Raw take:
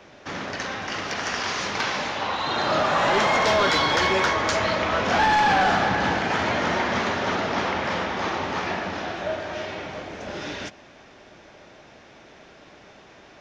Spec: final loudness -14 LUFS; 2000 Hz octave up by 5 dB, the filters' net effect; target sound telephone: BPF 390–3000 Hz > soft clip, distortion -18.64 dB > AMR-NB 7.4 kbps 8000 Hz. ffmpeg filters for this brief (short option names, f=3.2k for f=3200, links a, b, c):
-af "highpass=390,lowpass=3k,equalizer=f=2k:t=o:g=7,asoftclip=threshold=-13dB,volume=11.5dB" -ar 8000 -c:a libopencore_amrnb -b:a 7400